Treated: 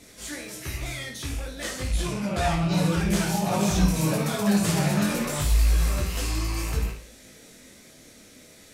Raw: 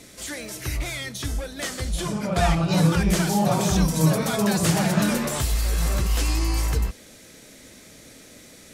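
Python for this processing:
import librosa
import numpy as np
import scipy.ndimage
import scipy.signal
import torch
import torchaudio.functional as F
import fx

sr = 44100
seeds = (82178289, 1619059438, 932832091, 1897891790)

y = fx.rattle_buzz(x, sr, strikes_db=-30.0, level_db=-27.0)
y = fx.room_flutter(y, sr, wall_m=9.3, rt60_s=0.45)
y = fx.detune_double(y, sr, cents=19)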